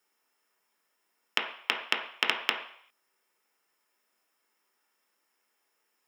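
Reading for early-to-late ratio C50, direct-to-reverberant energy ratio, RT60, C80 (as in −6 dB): 7.0 dB, 0.5 dB, 0.60 s, 10.0 dB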